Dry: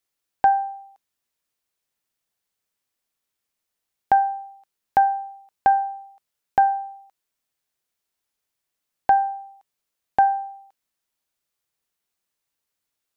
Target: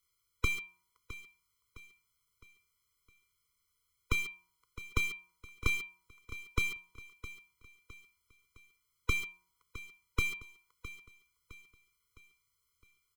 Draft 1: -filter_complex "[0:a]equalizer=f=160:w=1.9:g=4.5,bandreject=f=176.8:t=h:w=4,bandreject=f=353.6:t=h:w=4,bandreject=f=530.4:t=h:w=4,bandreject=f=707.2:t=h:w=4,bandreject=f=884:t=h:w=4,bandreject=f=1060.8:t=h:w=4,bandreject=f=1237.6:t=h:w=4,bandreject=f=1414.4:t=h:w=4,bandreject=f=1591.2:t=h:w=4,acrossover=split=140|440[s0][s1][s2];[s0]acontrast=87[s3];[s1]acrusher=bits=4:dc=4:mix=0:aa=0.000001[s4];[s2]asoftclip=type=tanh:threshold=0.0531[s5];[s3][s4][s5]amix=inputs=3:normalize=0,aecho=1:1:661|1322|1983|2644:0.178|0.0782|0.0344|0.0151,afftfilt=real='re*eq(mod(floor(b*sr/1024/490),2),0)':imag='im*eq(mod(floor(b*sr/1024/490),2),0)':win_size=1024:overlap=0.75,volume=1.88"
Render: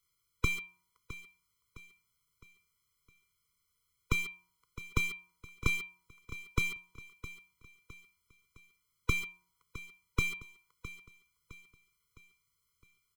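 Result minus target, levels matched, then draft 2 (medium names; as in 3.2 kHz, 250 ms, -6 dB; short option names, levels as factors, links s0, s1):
125 Hz band +2.5 dB
-filter_complex "[0:a]equalizer=f=160:w=1.9:g=-2.5,bandreject=f=176.8:t=h:w=4,bandreject=f=353.6:t=h:w=4,bandreject=f=530.4:t=h:w=4,bandreject=f=707.2:t=h:w=4,bandreject=f=884:t=h:w=4,bandreject=f=1060.8:t=h:w=4,bandreject=f=1237.6:t=h:w=4,bandreject=f=1414.4:t=h:w=4,bandreject=f=1591.2:t=h:w=4,acrossover=split=140|440[s0][s1][s2];[s0]acontrast=87[s3];[s1]acrusher=bits=4:dc=4:mix=0:aa=0.000001[s4];[s2]asoftclip=type=tanh:threshold=0.0531[s5];[s3][s4][s5]amix=inputs=3:normalize=0,aecho=1:1:661|1322|1983|2644:0.178|0.0782|0.0344|0.0151,afftfilt=real='re*eq(mod(floor(b*sr/1024/490),2),0)':imag='im*eq(mod(floor(b*sr/1024/490),2),0)':win_size=1024:overlap=0.75,volume=1.88"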